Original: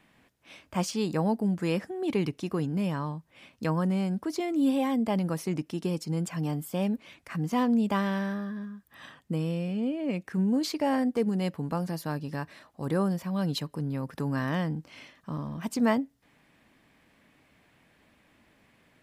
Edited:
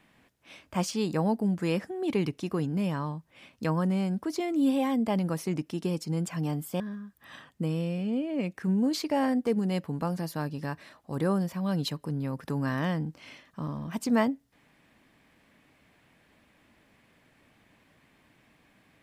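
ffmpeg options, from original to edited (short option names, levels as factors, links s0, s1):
-filter_complex "[0:a]asplit=2[s0][s1];[s0]atrim=end=6.802[s2];[s1]atrim=start=8.498[s3];[s2][s3]acrossfade=d=0.004:c1=hsin:c2=hsin"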